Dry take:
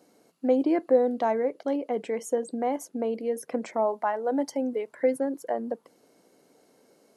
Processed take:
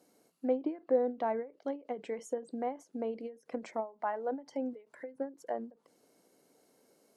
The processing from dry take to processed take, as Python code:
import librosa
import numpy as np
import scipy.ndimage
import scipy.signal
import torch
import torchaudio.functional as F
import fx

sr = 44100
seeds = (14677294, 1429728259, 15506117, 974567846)

y = fx.high_shelf(x, sr, hz=8500.0, db=8.5)
y = fx.env_lowpass_down(y, sr, base_hz=2500.0, full_db=-22.5)
y = fx.end_taper(y, sr, db_per_s=200.0)
y = y * librosa.db_to_amplitude(-7.0)